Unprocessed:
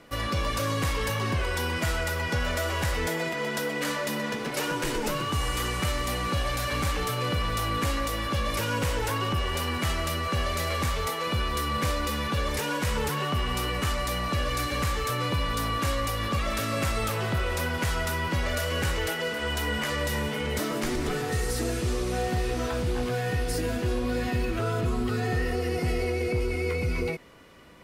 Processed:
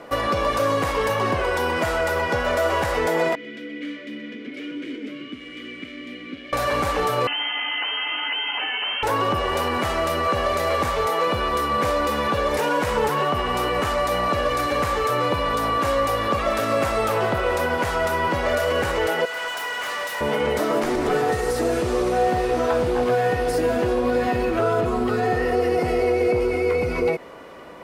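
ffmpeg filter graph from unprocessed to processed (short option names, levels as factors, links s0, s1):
-filter_complex "[0:a]asettb=1/sr,asplit=3[s0][s1][s2];[s0]atrim=end=3.354[s3];[s1]atrim=start=3.35:end=6.53,asetpts=PTS-STARTPTS,afade=t=in:d=0.004:c=qsin,afade=t=out:st=3.176:d=0.004:c=qsin,volume=17.8,asoftclip=hard,volume=0.0562,asplit=3[s4][s5][s6];[s4]bandpass=f=270:t=q:w=8,volume=1[s7];[s5]bandpass=f=2290:t=q:w=8,volume=0.501[s8];[s6]bandpass=f=3010:t=q:w=8,volume=0.355[s9];[s7][s8][s9]amix=inputs=3:normalize=0[s10];[s2]atrim=start=6.526[s11];[s3][s10]acrossfade=d=0.004:c1=hsin:c2=qsin[s12];[s12][s11]acrossfade=d=0.004:c1=qsin:c2=hsin,asettb=1/sr,asplit=3[s13][s14][s15];[s13]atrim=end=7.274[s16];[s14]atrim=start=7.27:end=9.03,asetpts=PTS-STARTPTS,afade=t=in:d=0.004:c=qsin,afade=t=out:st=1.756:d=0.004:c=qsin,aemphasis=mode=reproduction:type=75fm,volume=13.3,asoftclip=hard,volume=0.075,lowpass=f=2700:t=q:w=0.5098,lowpass=f=2700:t=q:w=0.6013,lowpass=f=2700:t=q:w=0.9,lowpass=f=2700:t=q:w=2.563,afreqshift=-3200[s17];[s15]atrim=start=9.026[s18];[s16][s17]acrossfade=d=0.004:c1=hsin:c2=qsin[s19];[s19][s18]acrossfade=d=0.004:c1=qsin:c2=hsin,asettb=1/sr,asplit=3[s20][s21][s22];[s20]atrim=end=19.254[s23];[s21]atrim=start=19.25:end=20.21,asetpts=PTS-STARTPTS,afade=t=in:d=0.004:c=qsin,afade=t=out:st=0.956:d=0.004:c=qsin,highpass=1100,asoftclip=type=hard:threshold=0.0178[s24];[s22]atrim=start=20.206[s25];[s23][s24]acrossfade=d=0.004:c1=hsin:c2=qsin[s26];[s26][s25]acrossfade=d=0.004:c1=qsin:c2=hsin,lowshelf=f=200:g=-3.5,alimiter=level_in=1.06:limit=0.0631:level=0:latency=1:release=140,volume=0.944,equalizer=f=650:t=o:w=2.8:g=13.5,volume=1.33"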